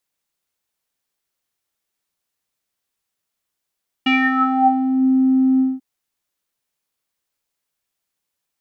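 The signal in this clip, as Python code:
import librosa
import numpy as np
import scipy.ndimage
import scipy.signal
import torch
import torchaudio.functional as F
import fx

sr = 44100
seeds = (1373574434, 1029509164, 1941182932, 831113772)

y = fx.sub_voice(sr, note=60, wave='square', cutoff_hz=350.0, q=10.0, env_oct=3.0, env_s=0.98, attack_ms=7.6, decay_s=0.23, sustain_db=-4, release_s=0.2, note_s=1.54, slope=12)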